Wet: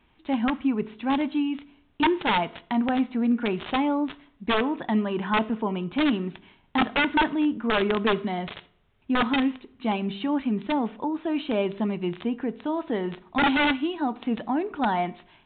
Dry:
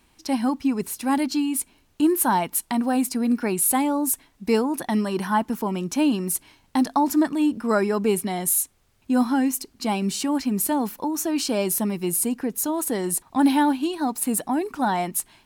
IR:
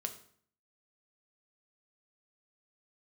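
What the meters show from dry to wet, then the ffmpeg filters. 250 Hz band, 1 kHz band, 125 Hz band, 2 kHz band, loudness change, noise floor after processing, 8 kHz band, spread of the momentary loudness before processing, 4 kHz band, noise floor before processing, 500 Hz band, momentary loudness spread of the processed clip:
-3.0 dB, -1.5 dB, -2.0 dB, +5.0 dB, -2.5 dB, -63 dBFS, under -40 dB, 6 LU, +2.0 dB, -61 dBFS, -2.0 dB, 7 LU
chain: -filter_complex "[0:a]aeval=exprs='(mod(4.73*val(0)+1,2)-1)/4.73':c=same,asplit=2[a][b];[1:a]atrim=start_sample=2205[c];[b][c]afir=irnorm=-1:irlink=0,volume=-3.5dB[d];[a][d]amix=inputs=2:normalize=0,aresample=8000,aresample=44100,volume=-5.5dB"

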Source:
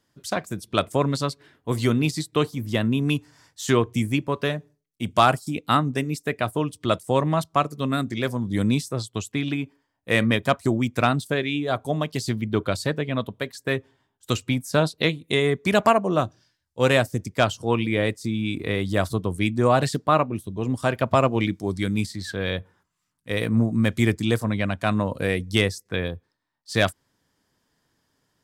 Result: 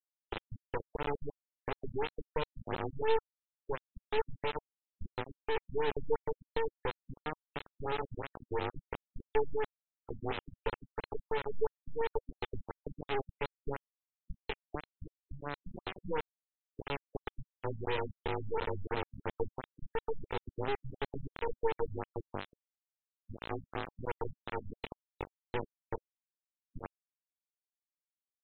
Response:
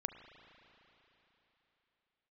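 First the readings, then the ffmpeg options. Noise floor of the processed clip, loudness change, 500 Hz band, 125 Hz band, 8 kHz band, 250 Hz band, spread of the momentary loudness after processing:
under -85 dBFS, -15.5 dB, -12.0 dB, -21.0 dB, under -40 dB, -23.0 dB, 12 LU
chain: -filter_complex "[0:a]afftfilt=real='re*(1-between(b*sr/4096,600,1600))':imag='im*(1-between(b*sr/4096,600,1600))':win_size=4096:overlap=0.75,acompressor=threshold=-32dB:ratio=16,asplit=3[a][b][c];[a]bandpass=f=300:t=q:w=8,volume=0dB[d];[b]bandpass=f=870:t=q:w=8,volume=-6dB[e];[c]bandpass=f=2.24k:t=q:w=8,volume=-9dB[f];[d][e][f]amix=inputs=3:normalize=0,flanger=delay=4.9:depth=5.4:regen=21:speed=0.13:shape=sinusoidal,afreqshift=150,aresample=16000,acrusher=bits=5:dc=4:mix=0:aa=0.000001,aresample=44100,afftfilt=real='re*lt(b*sr/1024,210*pow(4200/210,0.5+0.5*sin(2*PI*2.9*pts/sr)))':imag='im*lt(b*sr/1024,210*pow(4200/210,0.5+0.5*sin(2*PI*2.9*pts/sr)))':win_size=1024:overlap=0.75,volume=17dB"

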